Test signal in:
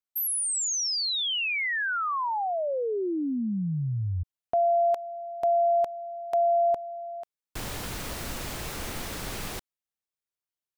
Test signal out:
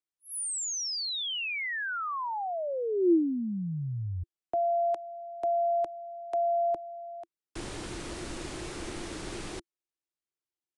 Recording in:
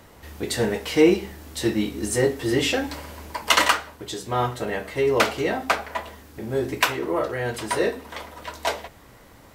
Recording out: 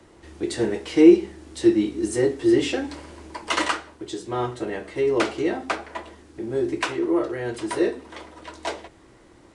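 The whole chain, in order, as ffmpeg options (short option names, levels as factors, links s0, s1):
-filter_complex "[0:a]equalizer=f=340:t=o:w=0.38:g=13.5,acrossover=split=160|440|2200[s0][s1][s2][s3];[s3]asoftclip=type=hard:threshold=0.1[s4];[s0][s1][s2][s4]amix=inputs=4:normalize=0,aresample=22050,aresample=44100,volume=0.562"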